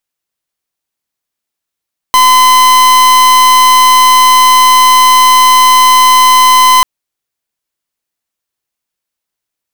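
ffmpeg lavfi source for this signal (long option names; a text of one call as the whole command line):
ffmpeg -f lavfi -i "aevalsrc='0.562*(2*lt(mod(1020*t,1),0.43)-1)':duration=4.69:sample_rate=44100" out.wav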